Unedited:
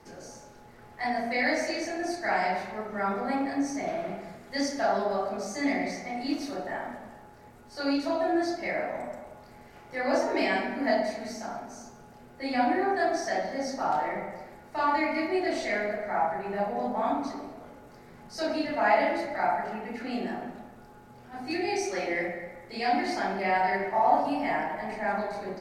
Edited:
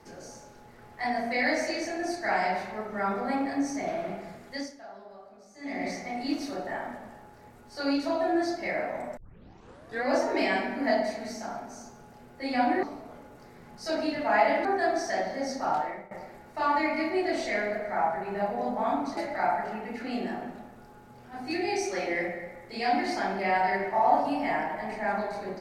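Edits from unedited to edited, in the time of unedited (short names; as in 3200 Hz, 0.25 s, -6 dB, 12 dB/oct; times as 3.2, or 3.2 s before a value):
4.47–5.87 dip -19.5 dB, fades 0.38 s quadratic
9.17 tape start 0.88 s
13.91–14.29 fade out, to -19 dB
17.35–19.17 move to 12.83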